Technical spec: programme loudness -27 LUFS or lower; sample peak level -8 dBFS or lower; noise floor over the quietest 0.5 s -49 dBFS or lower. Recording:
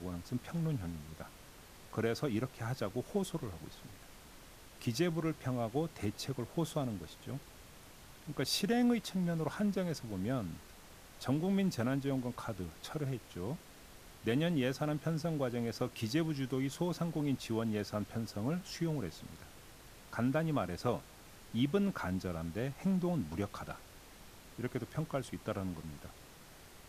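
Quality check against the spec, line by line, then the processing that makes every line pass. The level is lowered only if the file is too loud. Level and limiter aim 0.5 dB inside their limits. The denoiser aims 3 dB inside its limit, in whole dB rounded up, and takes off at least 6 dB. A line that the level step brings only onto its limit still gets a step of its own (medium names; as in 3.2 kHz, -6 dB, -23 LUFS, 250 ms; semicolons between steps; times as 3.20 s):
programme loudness -37.0 LUFS: pass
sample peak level -19.0 dBFS: pass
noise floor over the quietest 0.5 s -55 dBFS: pass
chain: none needed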